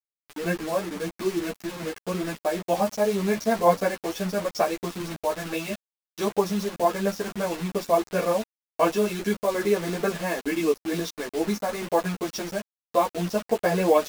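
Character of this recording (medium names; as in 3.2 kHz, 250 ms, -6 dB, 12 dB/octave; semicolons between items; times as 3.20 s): tremolo saw down 2.2 Hz, depth 40%; a quantiser's noise floor 6-bit, dither none; a shimmering, thickened sound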